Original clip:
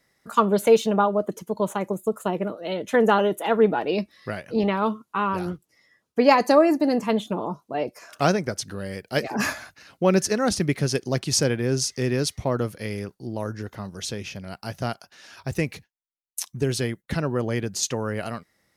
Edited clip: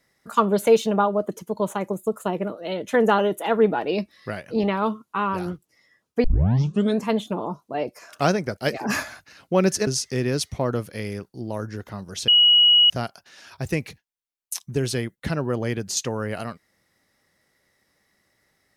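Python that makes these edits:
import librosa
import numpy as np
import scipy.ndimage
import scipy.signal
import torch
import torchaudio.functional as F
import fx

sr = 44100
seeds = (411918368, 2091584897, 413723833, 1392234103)

y = fx.edit(x, sr, fx.tape_start(start_s=6.24, length_s=0.8),
    fx.cut(start_s=8.57, length_s=0.5),
    fx.cut(start_s=10.37, length_s=1.36),
    fx.bleep(start_s=14.14, length_s=0.62, hz=2910.0, db=-11.5), tone=tone)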